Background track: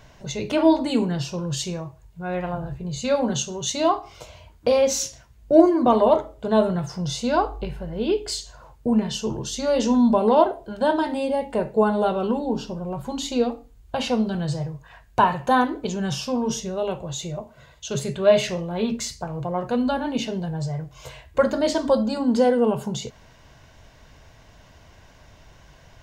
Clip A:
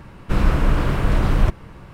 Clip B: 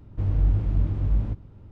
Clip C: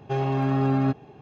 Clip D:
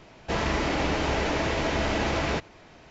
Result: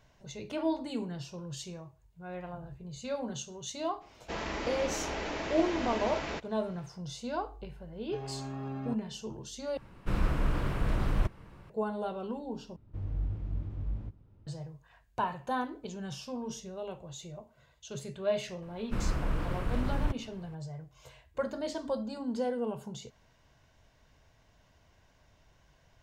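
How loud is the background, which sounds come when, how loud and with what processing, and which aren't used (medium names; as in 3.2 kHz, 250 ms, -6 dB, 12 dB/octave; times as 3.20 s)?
background track -14 dB
4.00 s: add D -9 dB, fades 0.02 s + peaking EQ 100 Hz -9.5 dB 0.99 oct
8.02 s: add C -16 dB
9.77 s: replace with A -11.5 dB
12.76 s: replace with B -12.5 dB
18.62 s: add A -14 dB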